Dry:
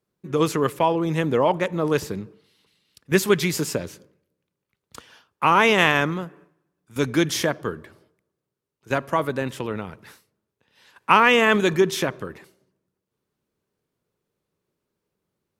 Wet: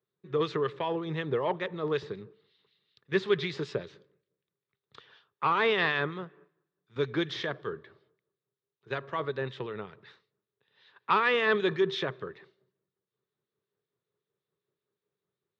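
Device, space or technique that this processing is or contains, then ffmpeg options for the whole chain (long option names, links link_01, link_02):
guitar amplifier with harmonic tremolo: -filter_complex "[0:a]asettb=1/sr,asplit=3[link_01][link_02][link_03];[link_01]atrim=end=5.674[link_04];[link_02]atrim=start=5.67:end=6.15,asetpts=PTS-STARTPTS,afade=type=in:duration=0.004:curve=qsin,afade=type=out:start_time=0.476:duration=0.004:curve=qsin,lowpass=5700[link_05];[link_03]atrim=start=6.146[link_06];[link_04][link_05]acrossfade=duration=0.004:curve1=hsin:curve2=qsin[link_07];[link_07][link_06]acrossfade=duration=0.004:curve1=qsin:curve2=hsin,acrossover=split=2000[link_08][link_09];[link_08]aeval=exprs='val(0)*(1-0.5/2+0.5/2*cos(2*PI*5.3*n/s))':channel_layout=same[link_10];[link_09]aeval=exprs='val(0)*(1-0.5/2-0.5/2*cos(2*PI*5.3*n/s))':channel_layout=same[link_11];[link_10][link_11]amix=inputs=2:normalize=0,asoftclip=type=tanh:threshold=-9dB,highpass=100,equalizer=frequency=130:width_type=q:width=4:gain=6,equalizer=frequency=260:width_type=q:width=4:gain=-7,equalizer=frequency=410:width_type=q:width=4:gain=9,equalizer=frequency=1200:width_type=q:width=4:gain=5,equalizer=frequency=1800:width_type=q:width=4:gain=6,equalizer=frequency=3700:width_type=q:width=4:gain=10,lowpass=frequency=4400:width=0.5412,lowpass=frequency=4400:width=1.3066,volume=-9dB"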